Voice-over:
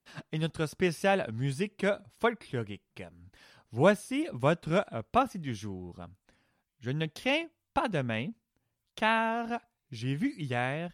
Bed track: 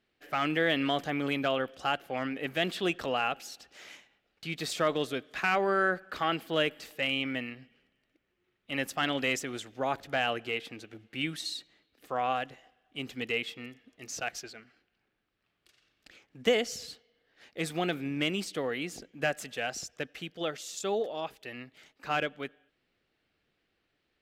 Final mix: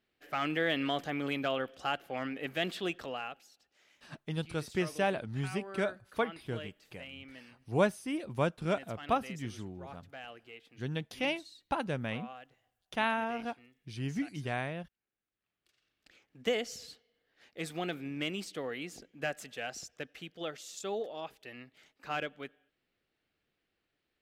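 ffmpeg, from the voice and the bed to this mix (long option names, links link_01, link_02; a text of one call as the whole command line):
ffmpeg -i stem1.wav -i stem2.wav -filter_complex "[0:a]adelay=3950,volume=-4dB[link_01];[1:a]volume=8.5dB,afade=type=out:start_time=2.69:duration=0.8:silence=0.199526,afade=type=in:start_time=15.01:duration=1.36:silence=0.251189[link_02];[link_01][link_02]amix=inputs=2:normalize=0" out.wav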